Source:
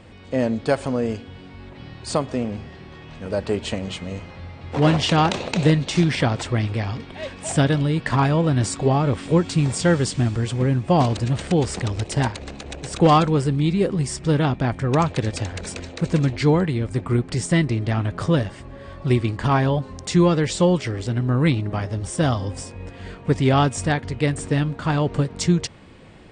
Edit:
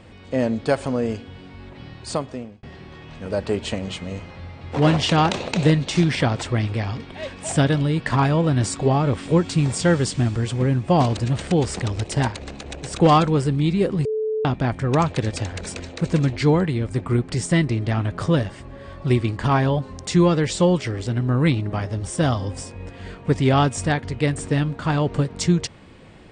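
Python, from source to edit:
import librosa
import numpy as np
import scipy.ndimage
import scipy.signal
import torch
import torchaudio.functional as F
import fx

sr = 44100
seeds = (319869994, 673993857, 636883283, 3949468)

y = fx.edit(x, sr, fx.fade_out_span(start_s=1.72, length_s=0.91, curve='qsin'),
    fx.bleep(start_s=14.05, length_s=0.4, hz=435.0, db=-20.5), tone=tone)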